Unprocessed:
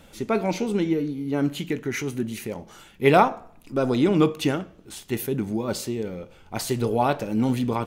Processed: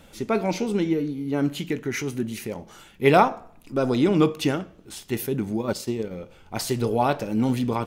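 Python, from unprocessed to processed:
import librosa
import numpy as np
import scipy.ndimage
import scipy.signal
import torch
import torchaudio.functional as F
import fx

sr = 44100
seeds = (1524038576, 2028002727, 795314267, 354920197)

y = fx.dynamic_eq(x, sr, hz=5200.0, q=5.3, threshold_db=-55.0, ratio=4.0, max_db=4)
y = fx.transient(y, sr, attack_db=4, sustain_db=-8, at=(5.59, 6.11))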